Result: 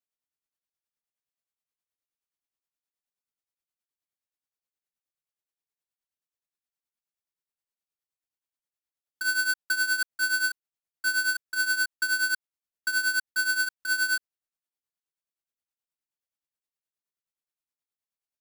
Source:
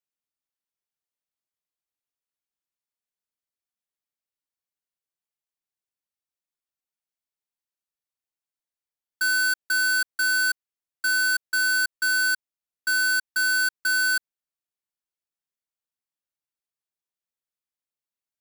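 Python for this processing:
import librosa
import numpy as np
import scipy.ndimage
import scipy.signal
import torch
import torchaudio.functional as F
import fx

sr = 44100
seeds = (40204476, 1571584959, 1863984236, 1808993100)

y = fx.tremolo_shape(x, sr, shape='triangle', hz=9.5, depth_pct=80)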